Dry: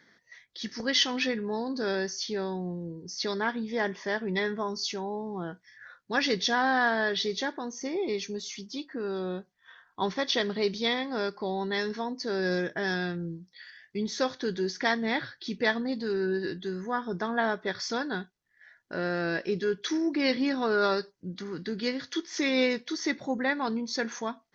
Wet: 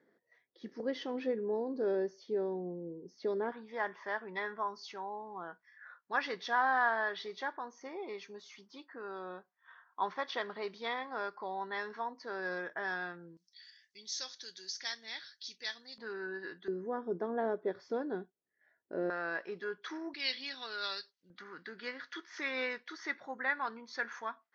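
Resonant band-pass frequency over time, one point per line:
resonant band-pass, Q 1.7
440 Hz
from 0:03.52 1,100 Hz
from 0:13.37 5,700 Hz
from 0:15.98 1,200 Hz
from 0:16.68 420 Hz
from 0:19.10 1,100 Hz
from 0:20.14 3,600 Hz
from 0:21.30 1,400 Hz

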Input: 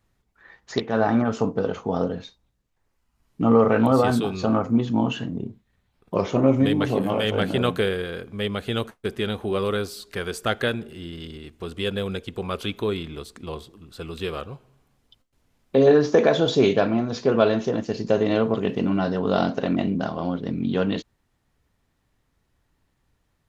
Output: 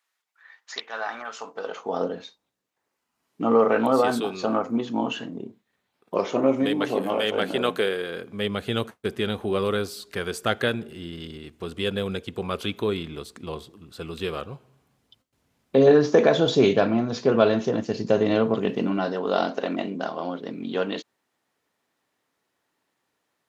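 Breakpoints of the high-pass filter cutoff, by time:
0:01.40 1,200 Hz
0:02.06 290 Hz
0:07.98 290 Hz
0:08.59 88 Hz
0:18.32 88 Hz
0:19.21 340 Hz

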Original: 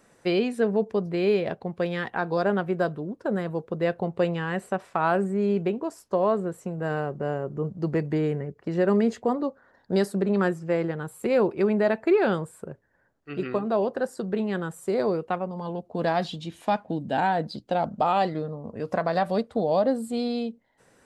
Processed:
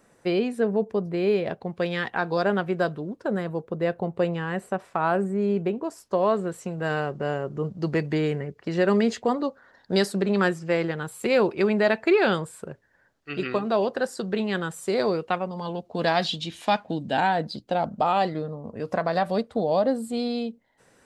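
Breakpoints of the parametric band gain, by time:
parametric band 4,000 Hz 2.6 octaves
0:01.24 −2.5 dB
0:01.89 +5.5 dB
0:03.13 +5.5 dB
0:03.65 −1.5 dB
0:05.67 −1.5 dB
0:06.51 +10 dB
0:16.86 +10 dB
0:17.67 +2 dB

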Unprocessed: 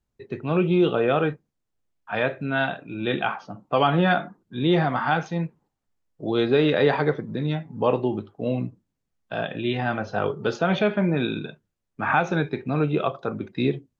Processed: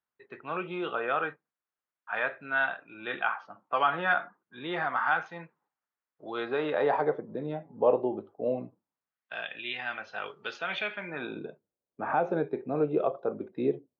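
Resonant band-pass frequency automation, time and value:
resonant band-pass, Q 1.5
0:06.29 1,400 Hz
0:07.26 580 Hz
0:08.55 580 Hz
0:09.43 2,400 Hz
0:11.02 2,400 Hz
0:11.42 510 Hz

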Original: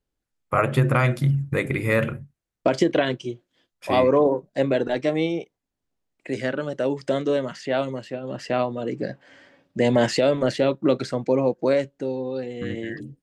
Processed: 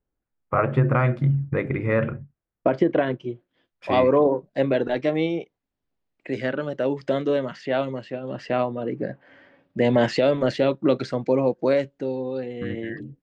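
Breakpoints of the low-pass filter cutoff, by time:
0:03.15 1,700 Hz
0:03.91 3,900 Hz
0:08.41 3,900 Hz
0:09.00 1,900 Hz
0:10.39 4,900 Hz
0:12.08 4,900 Hz
0:12.71 2,800 Hz

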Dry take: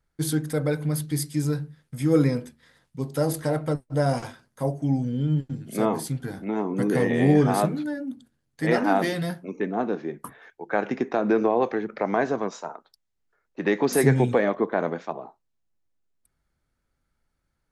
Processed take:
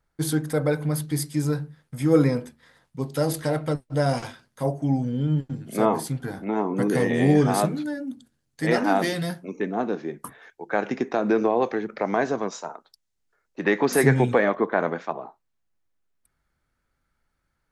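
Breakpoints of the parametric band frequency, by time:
parametric band +5 dB 1.8 octaves
880 Hz
from 0:03.06 3,300 Hz
from 0:04.66 910 Hz
from 0:06.88 6,800 Hz
from 0:13.64 1,500 Hz

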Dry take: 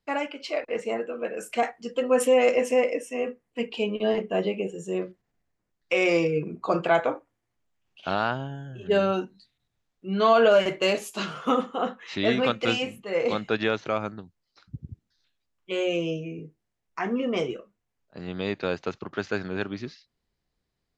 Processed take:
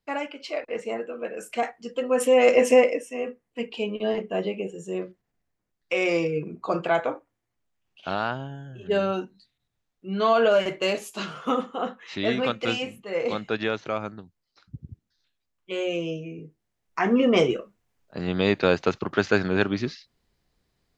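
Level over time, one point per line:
0:02.15 −1.5 dB
0:02.72 +7 dB
0:03.05 −1.5 dB
0:16.39 −1.5 dB
0:17.21 +7.5 dB

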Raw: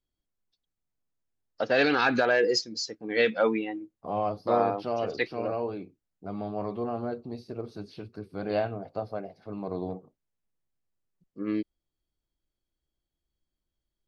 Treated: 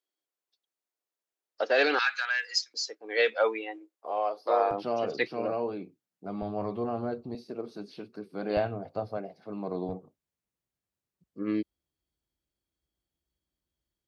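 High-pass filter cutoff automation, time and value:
high-pass filter 24 dB per octave
350 Hz
from 0:01.99 1,300 Hz
from 0:02.74 420 Hz
from 0:04.71 130 Hz
from 0:06.42 40 Hz
from 0:07.35 170 Hz
from 0:08.57 50 Hz
from 0:09.17 140 Hz
from 0:09.89 47 Hz

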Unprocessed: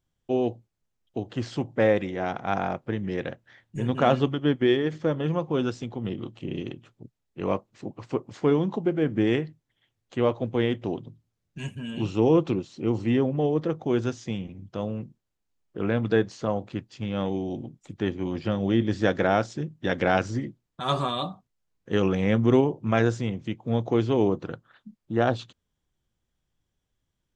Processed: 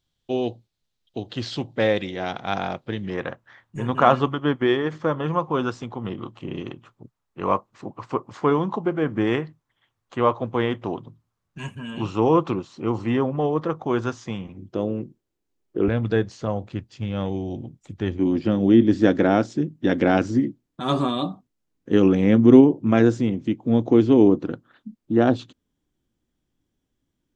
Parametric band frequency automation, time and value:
parametric band +12.5 dB 0.94 octaves
3,900 Hz
from 0:03.10 1,100 Hz
from 0:14.57 350 Hz
from 0:15.88 72 Hz
from 0:18.19 280 Hz

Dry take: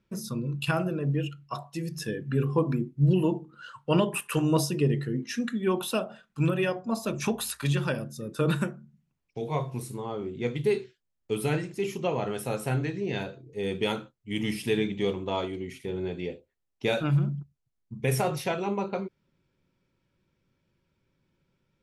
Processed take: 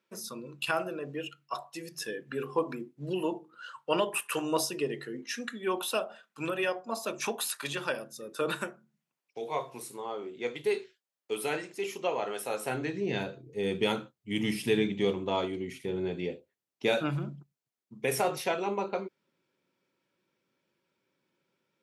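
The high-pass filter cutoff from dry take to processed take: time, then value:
0:12.53 450 Hz
0:13.20 120 Hz
0:16.28 120 Hz
0:17.39 300 Hz

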